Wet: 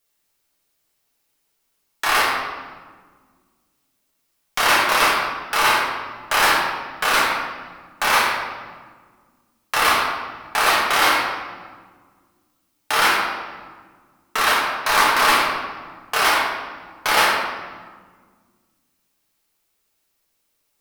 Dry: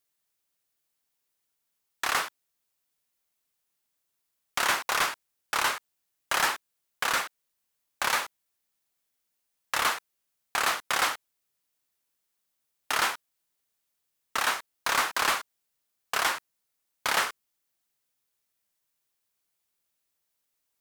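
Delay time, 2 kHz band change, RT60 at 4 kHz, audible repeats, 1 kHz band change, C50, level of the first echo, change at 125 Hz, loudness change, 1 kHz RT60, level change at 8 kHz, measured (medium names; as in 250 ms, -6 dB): no echo, +10.5 dB, 1.0 s, no echo, +11.5 dB, 1.0 dB, no echo, +11.5 dB, +9.0 dB, 1.5 s, +6.0 dB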